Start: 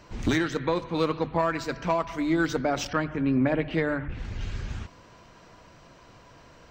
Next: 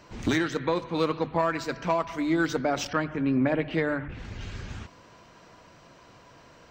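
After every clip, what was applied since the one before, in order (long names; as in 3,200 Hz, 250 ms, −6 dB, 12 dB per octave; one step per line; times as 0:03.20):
low-shelf EQ 65 Hz −10.5 dB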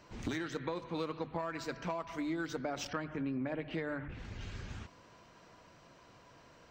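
downward compressor, threshold −27 dBFS, peak gain reduction 7.5 dB
level −6.5 dB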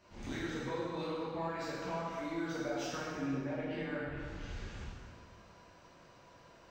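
dense smooth reverb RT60 1.9 s, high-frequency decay 0.8×, DRR −8 dB
level −8.5 dB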